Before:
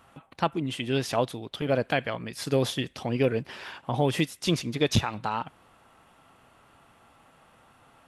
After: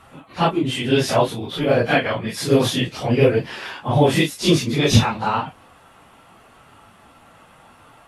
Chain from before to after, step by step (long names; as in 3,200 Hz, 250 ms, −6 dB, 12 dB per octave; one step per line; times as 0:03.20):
random phases in long frames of 100 ms
level +9 dB